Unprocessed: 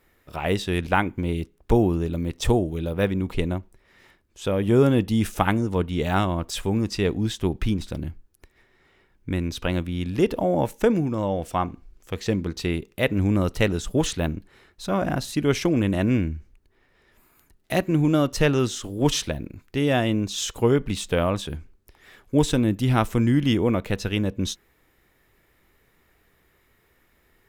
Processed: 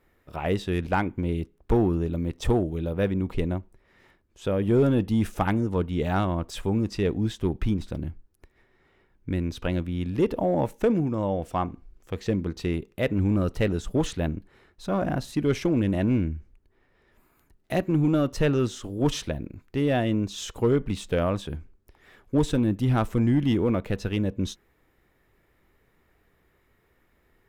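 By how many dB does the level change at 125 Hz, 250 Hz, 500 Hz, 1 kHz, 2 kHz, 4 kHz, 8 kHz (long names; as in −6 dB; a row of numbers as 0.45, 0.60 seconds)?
−2.0, −2.0, −2.5, −3.5, −5.5, −7.0, −8.5 decibels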